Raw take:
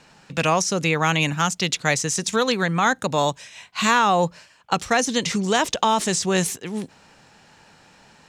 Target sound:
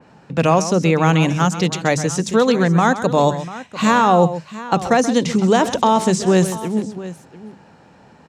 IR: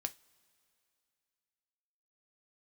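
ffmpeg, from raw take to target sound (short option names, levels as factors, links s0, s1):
-filter_complex "[0:a]highpass=70,tiltshelf=f=1500:g=9,bandreject=f=50:t=h:w=6,bandreject=f=100:t=h:w=6,bandreject=f=150:t=h:w=6,bandreject=f=200:t=h:w=6,asplit=2[s0][s1];[s1]aecho=0:1:130|694:0.237|0.158[s2];[s0][s2]amix=inputs=2:normalize=0,adynamicequalizer=threshold=0.02:dfrequency=3200:dqfactor=0.7:tfrequency=3200:tqfactor=0.7:attack=5:release=100:ratio=0.375:range=3:mode=boostabove:tftype=highshelf"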